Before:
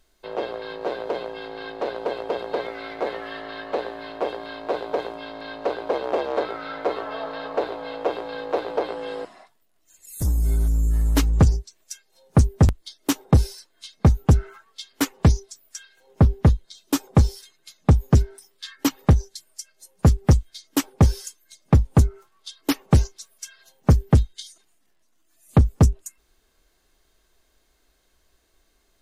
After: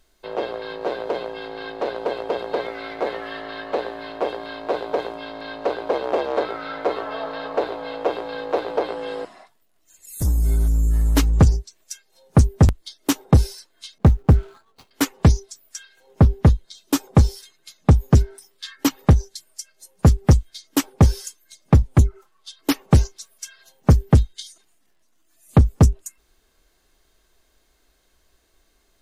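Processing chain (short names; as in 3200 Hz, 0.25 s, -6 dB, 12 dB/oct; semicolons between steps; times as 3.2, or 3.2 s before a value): 13.98–14.91 median filter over 25 samples; 21.82–22.59 envelope flanger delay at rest 11.6 ms, full sweep at -10.5 dBFS; gain +2 dB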